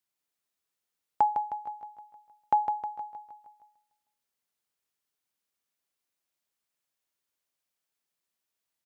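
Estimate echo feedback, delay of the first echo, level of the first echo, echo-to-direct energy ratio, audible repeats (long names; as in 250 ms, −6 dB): 54%, 156 ms, −7.0 dB, −5.5 dB, 6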